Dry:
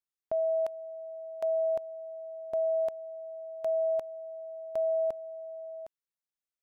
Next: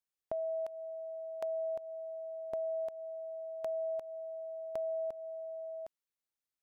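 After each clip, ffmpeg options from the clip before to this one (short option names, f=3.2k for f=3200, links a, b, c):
-af "acompressor=threshold=-34dB:ratio=5,volume=-1dB"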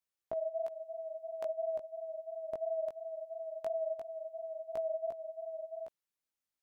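-af "flanger=delay=16.5:depth=4.4:speed=2.9,volume=3dB"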